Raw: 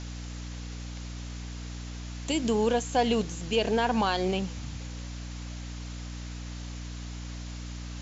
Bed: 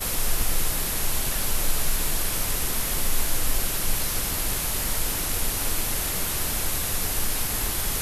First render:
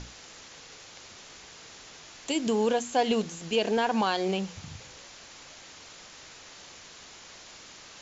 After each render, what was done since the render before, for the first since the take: hum notches 60/120/180/240/300 Hz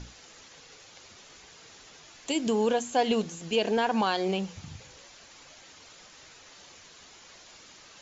noise reduction 6 dB, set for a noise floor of -49 dBFS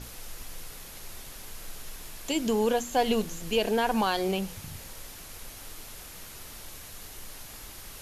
add bed -18.5 dB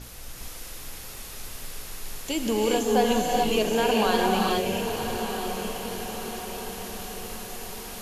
on a send: echo that smears into a reverb 1019 ms, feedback 57%, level -8 dB; on the sum: gated-style reverb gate 450 ms rising, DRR -1.5 dB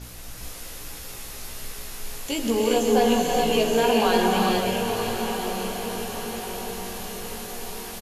doubling 17 ms -4 dB; two-band feedback delay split 790 Hz, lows 93 ms, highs 537 ms, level -9 dB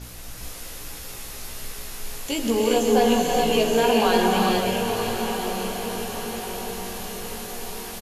trim +1 dB

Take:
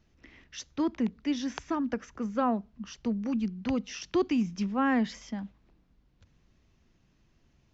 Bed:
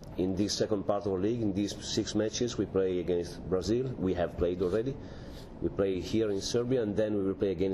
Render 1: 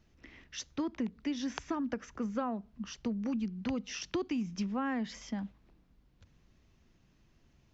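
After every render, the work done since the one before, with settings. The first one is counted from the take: compression 5:1, threshold -31 dBFS, peak gain reduction 9 dB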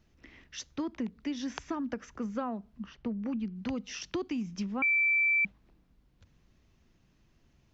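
2.85–3.54 s: low-pass 2.1 kHz -> 3.9 kHz; 4.82–5.45 s: bleep 2.33 kHz -23 dBFS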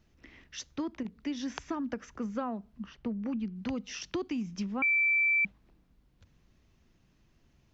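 0.70–1.38 s: dip -8 dB, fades 0.33 s logarithmic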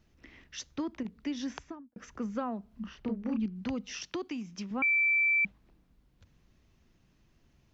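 1.42–1.96 s: studio fade out; 2.68–3.46 s: doubling 32 ms -3 dB; 4.05–4.71 s: bass shelf 190 Hz -11.5 dB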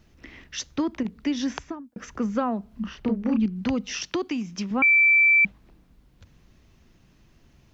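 trim +9 dB

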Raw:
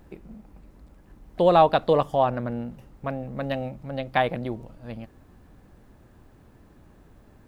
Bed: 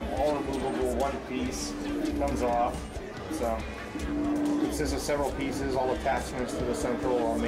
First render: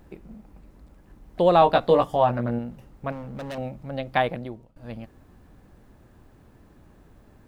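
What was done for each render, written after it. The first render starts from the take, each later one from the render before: 1.60–2.59 s: doubling 17 ms -4 dB; 3.12–3.58 s: hard clipper -31.5 dBFS; 4.24–4.76 s: fade out, to -22 dB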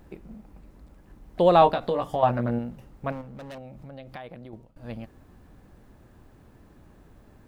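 1.72–2.23 s: compression 5:1, threshold -22 dBFS; 3.21–4.53 s: compression 4:1, threshold -40 dBFS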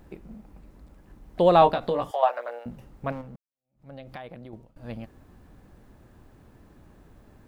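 2.11–2.66 s: steep high-pass 500 Hz; 3.36–3.90 s: fade in exponential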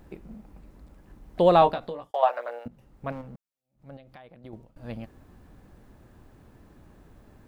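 1.52–2.14 s: fade out; 2.68–3.29 s: fade in, from -15.5 dB; 3.97–4.44 s: gain -8.5 dB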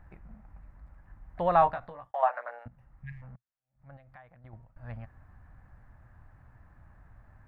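2.99–3.20 s: spectral replace 230–1600 Hz before; FFT filter 120 Hz 0 dB, 190 Hz -10 dB, 410 Hz -18 dB, 680 Hz -4 dB, 1.8 kHz +1 dB, 3.3 kHz -18 dB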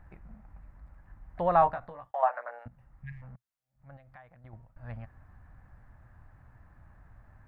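dynamic bell 3.4 kHz, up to -6 dB, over -53 dBFS, Q 1.1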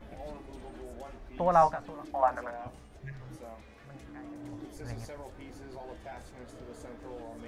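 add bed -17 dB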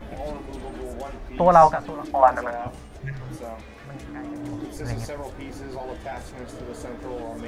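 trim +10.5 dB; peak limiter -2 dBFS, peak gain reduction 2.5 dB

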